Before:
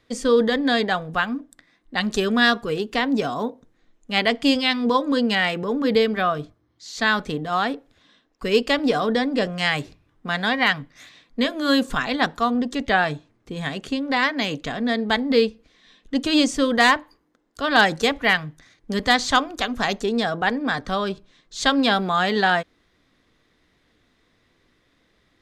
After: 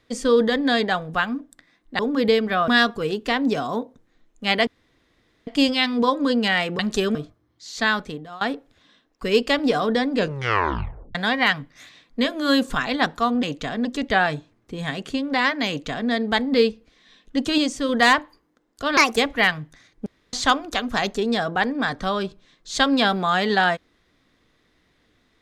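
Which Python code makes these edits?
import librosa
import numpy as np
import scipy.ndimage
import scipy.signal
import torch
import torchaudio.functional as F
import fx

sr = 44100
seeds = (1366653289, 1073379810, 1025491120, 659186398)

y = fx.edit(x, sr, fx.swap(start_s=1.99, length_s=0.36, other_s=5.66, other_length_s=0.69),
    fx.insert_room_tone(at_s=4.34, length_s=0.8),
    fx.fade_out_to(start_s=7.03, length_s=0.58, floor_db=-22.0),
    fx.tape_stop(start_s=9.35, length_s=1.0),
    fx.duplicate(start_s=14.46, length_s=0.42, to_s=12.63),
    fx.clip_gain(start_s=16.36, length_s=0.31, db=-4.0),
    fx.speed_span(start_s=17.75, length_s=0.27, speed=1.42),
    fx.room_tone_fill(start_s=18.92, length_s=0.27), tone=tone)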